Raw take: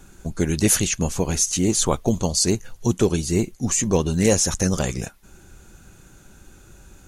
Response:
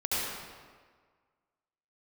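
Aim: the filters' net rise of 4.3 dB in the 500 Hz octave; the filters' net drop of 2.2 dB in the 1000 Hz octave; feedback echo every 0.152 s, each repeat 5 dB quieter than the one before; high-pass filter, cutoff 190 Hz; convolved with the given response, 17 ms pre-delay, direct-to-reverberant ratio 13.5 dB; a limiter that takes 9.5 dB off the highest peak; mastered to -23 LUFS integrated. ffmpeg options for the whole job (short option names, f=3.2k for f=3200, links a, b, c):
-filter_complex "[0:a]highpass=190,equalizer=f=500:t=o:g=6.5,equalizer=f=1k:t=o:g=-5.5,alimiter=limit=-12dB:level=0:latency=1,aecho=1:1:152|304|456|608|760|912|1064:0.562|0.315|0.176|0.0988|0.0553|0.031|0.0173,asplit=2[a][b];[1:a]atrim=start_sample=2205,adelay=17[c];[b][c]afir=irnorm=-1:irlink=0,volume=-22.5dB[d];[a][d]amix=inputs=2:normalize=0,volume=-1dB"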